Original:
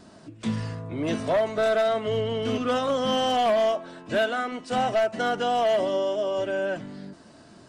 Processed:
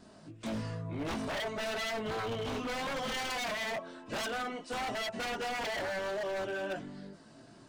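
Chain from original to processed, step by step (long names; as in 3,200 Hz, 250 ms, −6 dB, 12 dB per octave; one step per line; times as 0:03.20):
multi-voice chorus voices 4, 0.42 Hz, delay 22 ms, depth 4 ms
wave folding −28 dBFS
level −2.5 dB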